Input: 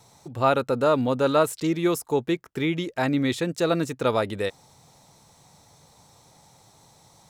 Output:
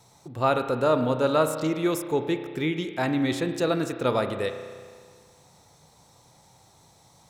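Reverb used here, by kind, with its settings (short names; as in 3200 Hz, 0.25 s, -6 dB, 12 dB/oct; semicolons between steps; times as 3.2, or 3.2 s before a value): spring tank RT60 1.8 s, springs 32 ms, chirp 25 ms, DRR 7.5 dB; gain -2 dB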